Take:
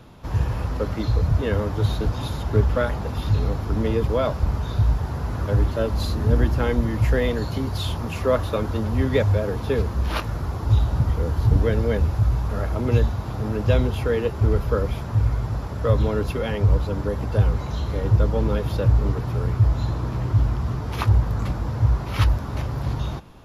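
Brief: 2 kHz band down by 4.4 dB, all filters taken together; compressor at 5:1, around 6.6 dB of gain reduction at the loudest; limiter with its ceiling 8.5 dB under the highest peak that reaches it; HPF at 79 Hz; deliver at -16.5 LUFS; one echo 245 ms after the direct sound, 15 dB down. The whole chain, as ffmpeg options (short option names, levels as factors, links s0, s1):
-af "highpass=79,equalizer=f=2000:t=o:g=-6,acompressor=threshold=0.0891:ratio=5,alimiter=limit=0.0891:level=0:latency=1,aecho=1:1:245:0.178,volume=4.73"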